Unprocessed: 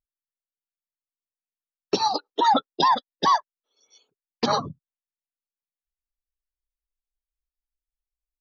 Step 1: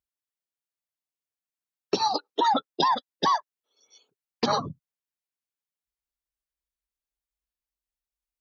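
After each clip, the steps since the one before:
high-pass filter 48 Hz
downward compressor 3 to 1, threshold −20 dBFS, peak gain reduction 4.5 dB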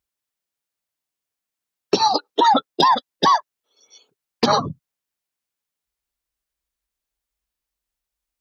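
hard clipping −13.5 dBFS, distortion −36 dB
level +7.5 dB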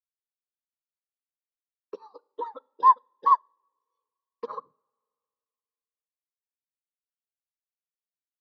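pair of resonant band-passes 720 Hz, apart 1.1 octaves
coupled-rooms reverb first 0.56 s, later 2.4 s, from −18 dB, DRR 15 dB
expander for the loud parts 2.5 to 1, over −30 dBFS
level +1.5 dB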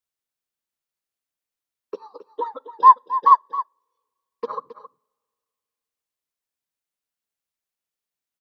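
single-tap delay 269 ms −13.5 dB
level +6.5 dB

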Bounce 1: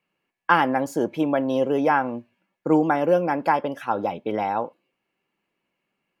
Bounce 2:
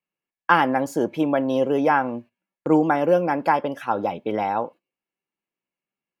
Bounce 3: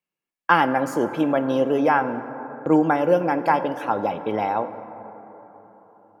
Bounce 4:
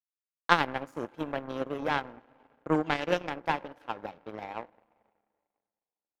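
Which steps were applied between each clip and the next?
noise gate −42 dBFS, range −15 dB; level +1 dB
dense smooth reverb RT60 4.3 s, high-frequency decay 0.3×, DRR 11 dB
gain on a spectral selection 0:02.86–0:03.29, 1,700–7,000 Hz +12 dB; power curve on the samples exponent 2

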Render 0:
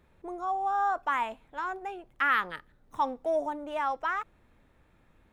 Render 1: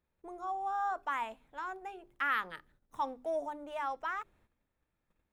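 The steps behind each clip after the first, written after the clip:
noise gate −59 dBFS, range −13 dB
high-shelf EQ 5,800 Hz +4.5 dB
mains-hum notches 50/100/150/200/250/300/350/400 Hz
level −6.5 dB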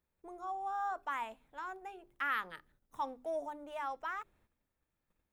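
high-shelf EQ 11,000 Hz +6 dB
level −3 dB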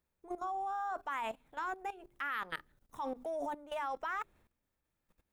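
output level in coarse steps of 16 dB
level +11 dB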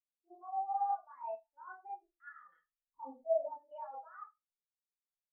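brickwall limiter −33.5 dBFS, peak gain reduction 10 dB
four-comb reverb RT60 0.46 s, combs from 26 ms, DRR −2.5 dB
every bin expanded away from the loudest bin 2.5 to 1
level +2 dB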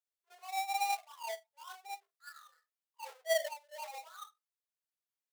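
each half-wave held at its own peak
linear-phase brick-wall high-pass 390 Hz
level −2.5 dB

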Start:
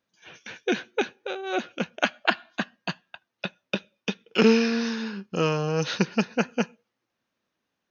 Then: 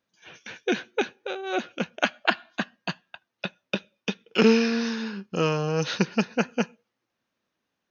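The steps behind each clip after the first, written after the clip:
no processing that can be heard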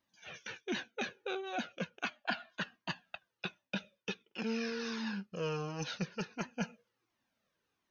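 reversed playback
downward compressor 6 to 1, threshold −32 dBFS, peak gain reduction 17.5 dB
reversed playback
flanger whose copies keep moving one way falling 1.4 Hz
level +2.5 dB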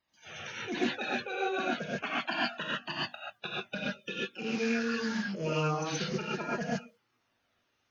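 spectral magnitudes quantised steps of 30 dB
reverb whose tail is shaped and stops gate 160 ms rising, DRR −6.5 dB
highs frequency-modulated by the lows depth 0.1 ms

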